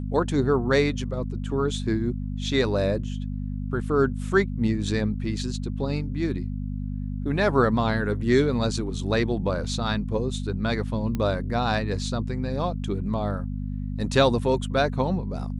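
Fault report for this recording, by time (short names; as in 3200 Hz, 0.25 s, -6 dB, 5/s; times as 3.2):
hum 50 Hz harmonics 5 -30 dBFS
11.15 pop -16 dBFS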